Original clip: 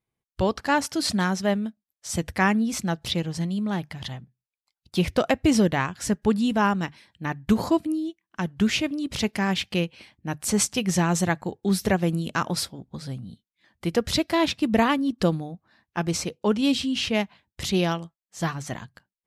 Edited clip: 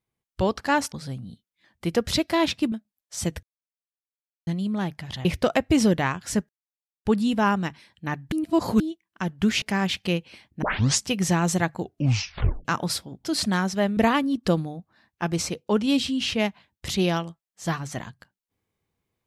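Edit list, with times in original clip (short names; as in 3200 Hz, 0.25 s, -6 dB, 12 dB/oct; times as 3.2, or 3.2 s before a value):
0.92–1.64 swap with 12.92–14.72
2.35–3.39 mute
4.17–4.99 cut
6.23 insert silence 0.56 s
7.5–7.98 reverse
8.8–9.29 cut
10.29 tape start 0.39 s
11.47 tape stop 0.85 s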